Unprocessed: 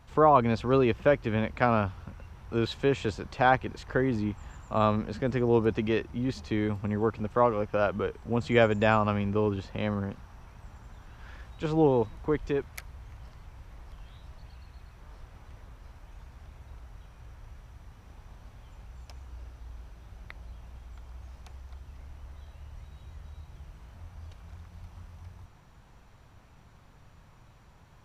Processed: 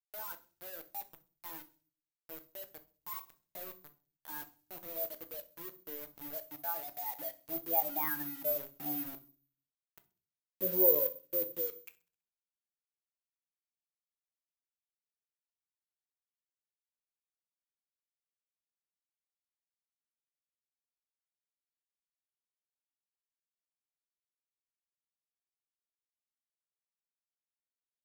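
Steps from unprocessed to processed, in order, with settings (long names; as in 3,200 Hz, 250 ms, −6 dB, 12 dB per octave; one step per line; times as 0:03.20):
expanding power law on the bin magnitudes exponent 2.1
source passing by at 0:09.94, 33 m/s, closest 5.3 metres
reverb reduction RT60 0.73 s
Bessel high-pass filter 240 Hz, order 8
pitch shifter +4 semitones
bit-depth reduction 10 bits, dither none
on a send: delay with a high-pass on its return 65 ms, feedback 47%, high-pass 5,600 Hz, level −16 dB
on the sum: rectangular room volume 230 cubic metres, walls furnished, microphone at 0.65 metres
bad sample-rate conversion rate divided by 3×, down none, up zero stuff
level +8.5 dB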